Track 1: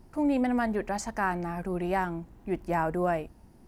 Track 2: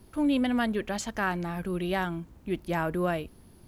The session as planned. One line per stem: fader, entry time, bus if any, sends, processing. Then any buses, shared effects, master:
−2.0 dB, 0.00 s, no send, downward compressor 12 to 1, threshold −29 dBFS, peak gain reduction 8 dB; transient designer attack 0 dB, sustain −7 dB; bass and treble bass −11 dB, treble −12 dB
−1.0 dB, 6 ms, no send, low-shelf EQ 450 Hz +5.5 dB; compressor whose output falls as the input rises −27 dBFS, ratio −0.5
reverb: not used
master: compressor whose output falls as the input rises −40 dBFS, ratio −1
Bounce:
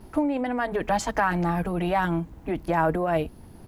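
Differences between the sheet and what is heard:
stem 1 −2.0 dB → +10.0 dB
master: missing compressor whose output falls as the input rises −40 dBFS, ratio −1

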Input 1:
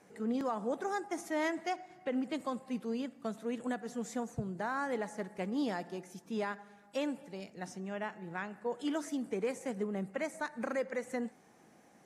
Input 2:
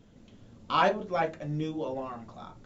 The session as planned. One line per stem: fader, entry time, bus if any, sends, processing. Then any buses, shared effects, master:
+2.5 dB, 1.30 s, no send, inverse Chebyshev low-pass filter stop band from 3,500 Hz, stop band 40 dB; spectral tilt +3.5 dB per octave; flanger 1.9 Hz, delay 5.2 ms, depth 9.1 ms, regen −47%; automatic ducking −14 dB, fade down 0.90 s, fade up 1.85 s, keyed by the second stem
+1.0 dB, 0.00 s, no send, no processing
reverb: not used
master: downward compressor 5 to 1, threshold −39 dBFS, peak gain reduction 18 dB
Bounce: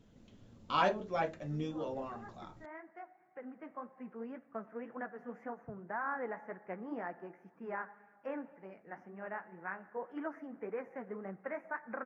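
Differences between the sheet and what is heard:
stem 2 +1.0 dB → −5.5 dB
master: missing downward compressor 5 to 1, threshold −39 dBFS, peak gain reduction 18 dB

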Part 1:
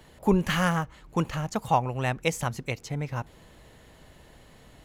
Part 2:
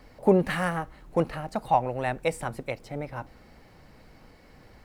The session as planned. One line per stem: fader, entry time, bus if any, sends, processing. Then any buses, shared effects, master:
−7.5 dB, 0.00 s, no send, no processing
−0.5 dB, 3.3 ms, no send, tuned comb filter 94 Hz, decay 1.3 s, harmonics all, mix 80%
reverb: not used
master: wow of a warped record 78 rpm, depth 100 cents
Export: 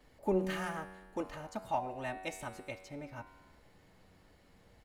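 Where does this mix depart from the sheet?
stem 1 −7.5 dB → −15.0 dB
master: missing wow of a warped record 78 rpm, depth 100 cents

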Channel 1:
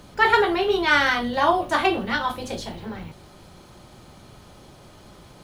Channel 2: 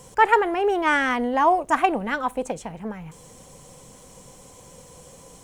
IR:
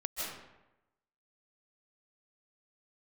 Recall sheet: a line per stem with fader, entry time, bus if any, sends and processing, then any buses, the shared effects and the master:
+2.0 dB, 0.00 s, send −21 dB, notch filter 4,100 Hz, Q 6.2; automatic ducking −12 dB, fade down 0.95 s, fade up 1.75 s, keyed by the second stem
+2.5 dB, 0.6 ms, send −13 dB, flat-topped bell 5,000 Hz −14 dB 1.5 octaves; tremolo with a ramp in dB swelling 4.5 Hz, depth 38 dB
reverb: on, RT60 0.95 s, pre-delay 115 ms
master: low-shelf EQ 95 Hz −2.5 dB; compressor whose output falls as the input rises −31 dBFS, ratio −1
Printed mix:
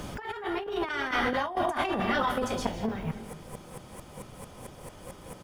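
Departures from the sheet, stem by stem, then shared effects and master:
stem 2: polarity flipped
master: missing low-shelf EQ 95 Hz −2.5 dB

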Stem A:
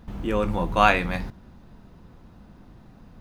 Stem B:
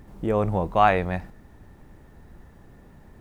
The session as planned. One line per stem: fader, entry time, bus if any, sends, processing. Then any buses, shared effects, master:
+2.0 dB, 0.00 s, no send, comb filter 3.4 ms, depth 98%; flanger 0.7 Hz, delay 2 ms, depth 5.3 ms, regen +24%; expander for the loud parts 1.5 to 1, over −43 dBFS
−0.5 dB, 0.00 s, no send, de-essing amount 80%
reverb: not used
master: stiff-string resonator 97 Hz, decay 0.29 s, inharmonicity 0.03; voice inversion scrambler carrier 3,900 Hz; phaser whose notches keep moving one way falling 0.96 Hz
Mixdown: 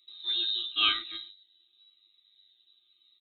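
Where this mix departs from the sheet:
stem A: missing flanger 0.7 Hz, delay 2 ms, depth 5.3 ms, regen +24%
stem B −0.5 dB → −11.5 dB

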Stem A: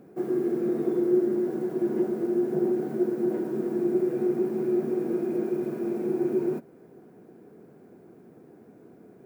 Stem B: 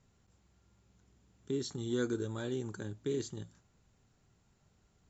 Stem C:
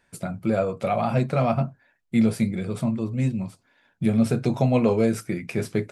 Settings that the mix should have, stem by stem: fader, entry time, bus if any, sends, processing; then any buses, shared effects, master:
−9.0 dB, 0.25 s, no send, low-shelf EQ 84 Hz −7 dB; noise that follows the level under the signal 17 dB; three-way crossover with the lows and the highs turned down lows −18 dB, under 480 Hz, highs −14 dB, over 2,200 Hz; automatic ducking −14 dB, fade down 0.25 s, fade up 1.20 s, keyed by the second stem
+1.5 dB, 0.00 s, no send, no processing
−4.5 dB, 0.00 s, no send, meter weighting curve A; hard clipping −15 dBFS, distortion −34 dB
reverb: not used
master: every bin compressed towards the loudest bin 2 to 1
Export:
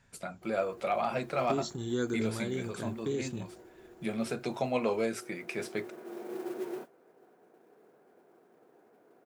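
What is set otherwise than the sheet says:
stem A −9.0 dB → −2.0 dB
master: missing every bin compressed towards the loudest bin 2 to 1

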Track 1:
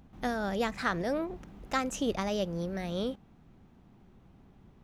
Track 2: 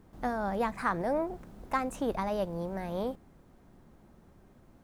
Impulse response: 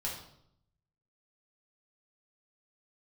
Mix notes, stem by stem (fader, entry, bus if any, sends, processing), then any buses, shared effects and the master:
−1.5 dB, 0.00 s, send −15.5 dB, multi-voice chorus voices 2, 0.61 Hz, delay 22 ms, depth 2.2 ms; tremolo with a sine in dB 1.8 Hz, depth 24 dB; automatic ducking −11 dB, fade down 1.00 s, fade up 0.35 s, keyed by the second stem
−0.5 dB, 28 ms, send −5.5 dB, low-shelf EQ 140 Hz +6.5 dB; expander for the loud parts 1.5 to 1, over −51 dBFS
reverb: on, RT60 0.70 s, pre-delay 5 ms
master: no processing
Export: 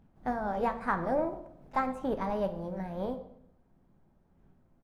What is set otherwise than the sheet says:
stem 2: missing low-shelf EQ 140 Hz +6.5 dB
master: extra high-shelf EQ 2,900 Hz −10.5 dB

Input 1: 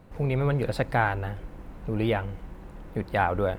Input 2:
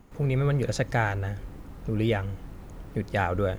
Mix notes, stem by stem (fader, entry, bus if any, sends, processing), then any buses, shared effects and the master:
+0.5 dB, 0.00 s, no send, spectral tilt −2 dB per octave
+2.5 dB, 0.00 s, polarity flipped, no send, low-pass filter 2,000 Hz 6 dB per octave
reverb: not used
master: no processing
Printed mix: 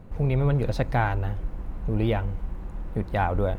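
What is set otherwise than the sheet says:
stem 2 +2.5 dB → −5.5 dB
master: extra high-shelf EQ 6,800 Hz +4.5 dB

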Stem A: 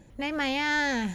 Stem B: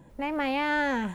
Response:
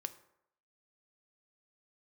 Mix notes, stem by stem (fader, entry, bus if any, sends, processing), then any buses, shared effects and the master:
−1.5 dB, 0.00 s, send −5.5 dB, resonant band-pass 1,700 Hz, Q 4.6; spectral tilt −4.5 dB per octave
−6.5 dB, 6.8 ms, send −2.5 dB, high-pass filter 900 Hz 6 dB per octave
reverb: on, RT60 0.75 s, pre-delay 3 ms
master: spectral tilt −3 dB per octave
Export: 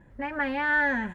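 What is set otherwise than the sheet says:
stem A −1.5 dB → +8.0 dB
stem B: polarity flipped

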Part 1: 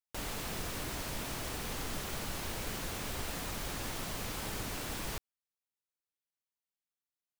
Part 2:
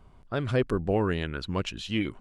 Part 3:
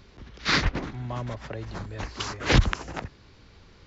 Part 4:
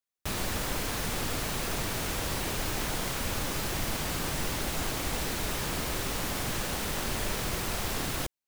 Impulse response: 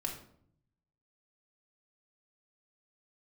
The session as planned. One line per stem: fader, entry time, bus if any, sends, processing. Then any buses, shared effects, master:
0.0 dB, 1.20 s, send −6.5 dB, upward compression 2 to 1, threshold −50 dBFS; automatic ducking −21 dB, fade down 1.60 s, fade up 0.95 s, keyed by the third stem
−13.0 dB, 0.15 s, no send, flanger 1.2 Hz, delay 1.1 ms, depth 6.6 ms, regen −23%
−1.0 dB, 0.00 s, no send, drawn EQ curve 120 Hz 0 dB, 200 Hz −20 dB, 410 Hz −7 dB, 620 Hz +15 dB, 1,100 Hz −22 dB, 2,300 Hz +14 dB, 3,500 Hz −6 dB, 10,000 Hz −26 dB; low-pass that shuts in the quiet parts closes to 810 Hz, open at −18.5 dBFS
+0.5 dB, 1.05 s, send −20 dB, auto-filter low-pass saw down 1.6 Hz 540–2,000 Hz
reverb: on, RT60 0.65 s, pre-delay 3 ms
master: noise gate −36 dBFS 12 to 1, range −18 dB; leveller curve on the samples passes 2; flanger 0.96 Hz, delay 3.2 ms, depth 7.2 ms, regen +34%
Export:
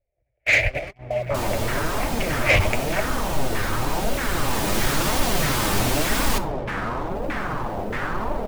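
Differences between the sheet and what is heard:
stem 1 0.0 dB → +9.0 dB
stem 2 −13.0 dB → −21.0 dB

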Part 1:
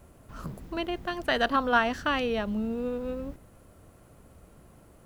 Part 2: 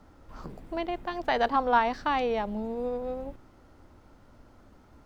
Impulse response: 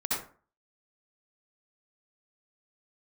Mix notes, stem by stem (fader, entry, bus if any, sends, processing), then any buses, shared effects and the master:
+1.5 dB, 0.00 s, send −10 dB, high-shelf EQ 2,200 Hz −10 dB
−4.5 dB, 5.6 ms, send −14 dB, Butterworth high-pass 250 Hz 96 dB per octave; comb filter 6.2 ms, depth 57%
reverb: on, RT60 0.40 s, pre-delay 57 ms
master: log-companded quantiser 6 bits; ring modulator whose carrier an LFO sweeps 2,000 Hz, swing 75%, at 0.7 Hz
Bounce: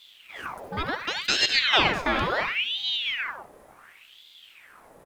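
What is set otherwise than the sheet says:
stem 1: missing high-shelf EQ 2,200 Hz −10 dB
master: missing log-companded quantiser 6 bits

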